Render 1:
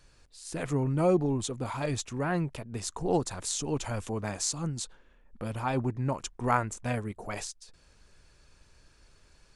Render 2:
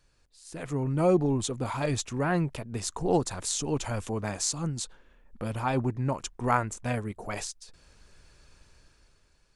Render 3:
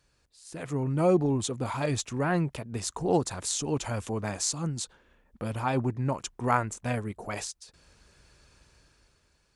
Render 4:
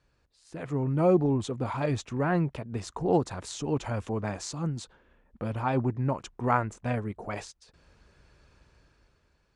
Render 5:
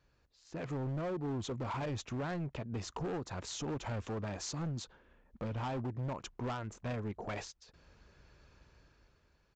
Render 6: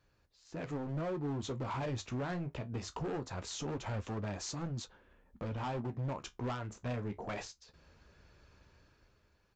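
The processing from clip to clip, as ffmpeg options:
ffmpeg -i in.wav -af "dynaudnorm=framelen=150:gausssize=11:maxgain=10dB,volume=-7dB" out.wav
ffmpeg -i in.wav -af "highpass=43" out.wav
ffmpeg -i in.wav -af "aemphasis=mode=reproduction:type=75fm" out.wav
ffmpeg -i in.wav -af "acompressor=threshold=-28dB:ratio=16,aresample=16000,asoftclip=type=hard:threshold=-32dB,aresample=44100,volume=-2dB" out.wav
ffmpeg -i in.wav -af "flanger=delay=9.6:depth=6.3:regen=-50:speed=0.22:shape=sinusoidal,volume=4dB" out.wav

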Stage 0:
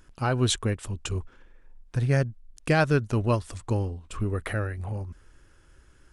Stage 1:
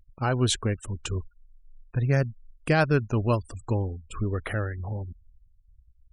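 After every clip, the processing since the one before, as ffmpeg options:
ffmpeg -i in.wav -af "afftfilt=real='re*gte(hypot(re,im),0.01)':imag='im*gte(hypot(re,im),0.01)':win_size=1024:overlap=0.75" out.wav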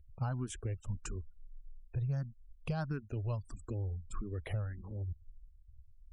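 ffmpeg -i in.wav -filter_complex "[0:a]lowshelf=frequency=180:gain=10.5,acompressor=threshold=-26dB:ratio=6,asplit=2[link_01][link_02];[link_02]afreqshift=1.6[link_03];[link_01][link_03]amix=inputs=2:normalize=1,volume=-5.5dB" out.wav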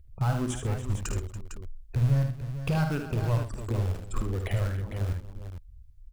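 ffmpeg -i in.wav -filter_complex "[0:a]asplit=2[link_01][link_02];[link_02]acrusher=bits=3:dc=4:mix=0:aa=0.000001,volume=-9.5dB[link_03];[link_01][link_03]amix=inputs=2:normalize=0,aecho=1:1:51|75|126|284|454:0.355|0.447|0.178|0.178|0.335,volume=6.5dB" out.wav

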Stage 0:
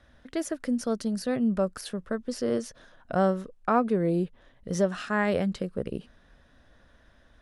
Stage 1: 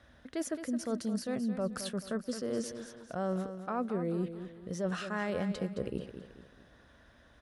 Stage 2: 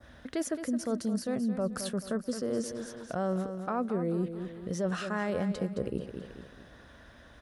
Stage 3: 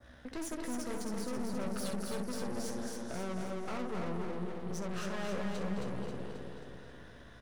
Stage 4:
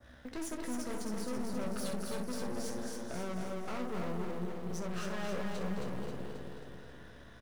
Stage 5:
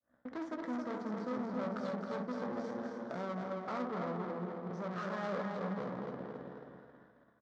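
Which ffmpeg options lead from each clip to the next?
ffmpeg -i in.wav -af "highpass=53,areverse,acompressor=threshold=-31dB:ratio=6,areverse,aecho=1:1:217|434|651|868:0.316|0.123|0.0481|0.0188" out.wav
ffmpeg -i in.wav -filter_complex "[0:a]adynamicequalizer=threshold=0.00158:dfrequency=2900:dqfactor=0.76:tfrequency=2900:tqfactor=0.76:attack=5:release=100:ratio=0.375:range=2.5:mode=cutabove:tftype=bell,asplit=2[link_01][link_02];[link_02]acompressor=threshold=-41dB:ratio=6,volume=1.5dB[link_03];[link_01][link_03]amix=inputs=2:normalize=0" out.wav
ffmpeg -i in.wav -filter_complex "[0:a]asplit=2[link_01][link_02];[link_02]aecho=0:1:16|65:0.447|0.355[link_03];[link_01][link_03]amix=inputs=2:normalize=0,aeval=exprs='(tanh(70.8*val(0)+0.75)-tanh(0.75))/70.8':channel_layout=same,asplit=2[link_04][link_05];[link_05]aecho=0:1:268|536|804|1072|1340|1608|1876:0.631|0.347|0.191|0.105|0.0577|0.0318|0.0175[link_06];[link_04][link_06]amix=inputs=2:normalize=0" out.wav
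ffmpeg -i in.wav -filter_complex "[0:a]asplit=2[link_01][link_02];[link_02]acrusher=bits=4:mode=log:mix=0:aa=0.000001,volume=-6.5dB[link_03];[link_01][link_03]amix=inputs=2:normalize=0,asplit=2[link_04][link_05];[link_05]adelay=28,volume=-12.5dB[link_06];[link_04][link_06]amix=inputs=2:normalize=0,volume=-4dB" out.wav
ffmpeg -i in.wav -af "adynamicsmooth=sensitivity=6.5:basefreq=1200,highpass=210,equalizer=frequency=380:width_type=q:width=4:gain=-6,equalizer=frequency=1200:width_type=q:width=4:gain=4,equalizer=frequency=2700:width_type=q:width=4:gain=-8,lowpass=frequency=6900:width=0.5412,lowpass=frequency=6900:width=1.3066,agate=range=-33dB:threshold=-51dB:ratio=3:detection=peak,volume=3dB" out.wav

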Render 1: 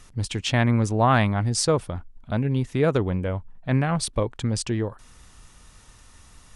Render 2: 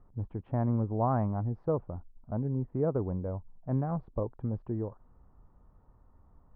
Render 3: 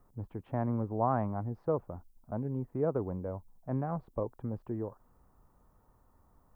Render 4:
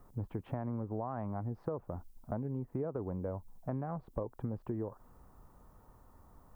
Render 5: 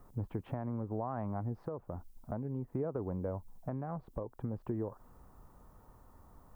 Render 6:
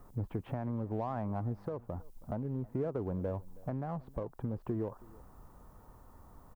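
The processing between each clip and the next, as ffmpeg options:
ffmpeg -i in.wav -af "lowpass=frequency=1000:width=0.5412,lowpass=frequency=1000:width=1.3066,volume=-8dB" out.wav
ffmpeg -i in.wav -filter_complex "[0:a]lowshelf=frequency=170:gain=-7.5,acrossover=split=380[link_01][link_02];[link_02]crystalizer=i=3:c=0[link_03];[link_01][link_03]amix=inputs=2:normalize=0" out.wav
ffmpeg -i in.wav -af "alimiter=limit=-23dB:level=0:latency=1:release=69,acompressor=threshold=-40dB:ratio=6,volume=6dB" out.wav
ffmpeg -i in.wav -af "alimiter=level_in=2dB:limit=-24dB:level=0:latency=1:release=494,volume=-2dB,volume=1dB" out.wav
ffmpeg -i in.wav -filter_complex "[0:a]asplit=2[link_01][link_02];[link_02]asoftclip=type=hard:threshold=-39.5dB,volume=-9dB[link_03];[link_01][link_03]amix=inputs=2:normalize=0,aecho=1:1:321:0.075" out.wav

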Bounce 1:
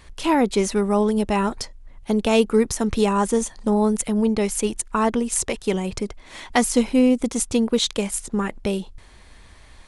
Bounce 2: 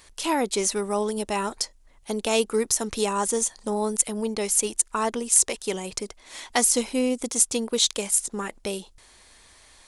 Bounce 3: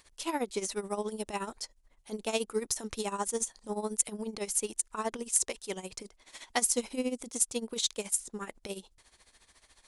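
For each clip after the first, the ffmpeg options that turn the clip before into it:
ffmpeg -i in.wav -af "bass=frequency=250:gain=-10,treble=frequency=4000:gain=10,volume=-4dB" out.wav
ffmpeg -i in.wav -af "tremolo=f=14:d=0.79,volume=-5.5dB" out.wav

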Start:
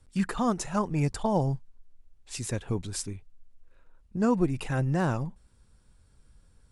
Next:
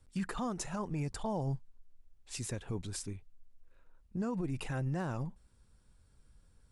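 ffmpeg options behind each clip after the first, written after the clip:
ffmpeg -i in.wav -af "alimiter=limit=-23dB:level=0:latency=1:release=52,volume=-4.5dB" out.wav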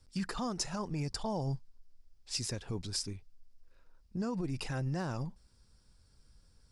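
ffmpeg -i in.wav -af "equalizer=frequency=5000:width_type=o:width=0.5:gain=13" out.wav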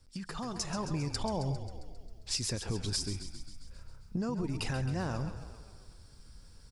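ffmpeg -i in.wav -filter_complex "[0:a]acompressor=threshold=-40dB:ratio=6,asplit=2[link_01][link_02];[link_02]asplit=8[link_03][link_04][link_05][link_06][link_07][link_08][link_09][link_10];[link_03]adelay=134,afreqshift=-33,volume=-10.5dB[link_11];[link_04]adelay=268,afreqshift=-66,volume=-14.5dB[link_12];[link_05]adelay=402,afreqshift=-99,volume=-18.5dB[link_13];[link_06]adelay=536,afreqshift=-132,volume=-22.5dB[link_14];[link_07]adelay=670,afreqshift=-165,volume=-26.6dB[link_15];[link_08]adelay=804,afreqshift=-198,volume=-30.6dB[link_16];[link_09]adelay=938,afreqshift=-231,volume=-34.6dB[link_17];[link_10]adelay=1072,afreqshift=-264,volume=-38.6dB[link_18];[link_11][link_12][link_13][link_14][link_15][link_16][link_17][link_18]amix=inputs=8:normalize=0[link_19];[link_01][link_19]amix=inputs=2:normalize=0,dynaudnorm=framelen=220:gausssize=5:maxgain=7.5dB,volume=1.5dB" out.wav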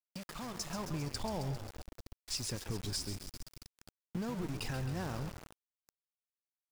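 ffmpeg -i in.wav -af "aeval=exprs='val(0)*gte(abs(val(0)),0.0119)':channel_layout=same,volume=-4dB" out.wav

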